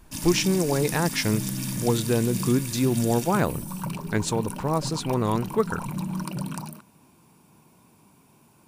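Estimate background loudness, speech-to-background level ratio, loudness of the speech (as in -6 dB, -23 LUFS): -32.0 LUFS, 6.5 dB, -25.5 LUFS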